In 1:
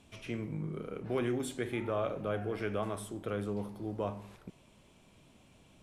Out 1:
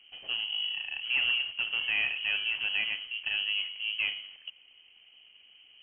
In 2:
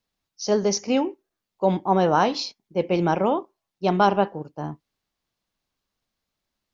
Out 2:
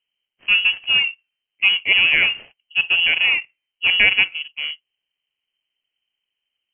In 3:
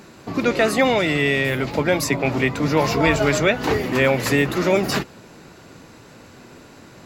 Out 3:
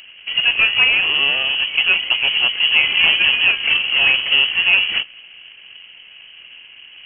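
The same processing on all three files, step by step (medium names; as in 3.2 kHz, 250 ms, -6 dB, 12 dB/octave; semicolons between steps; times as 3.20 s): median filter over 25 samples; frequency inversion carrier 3.1 kHz; trim +4.5 dB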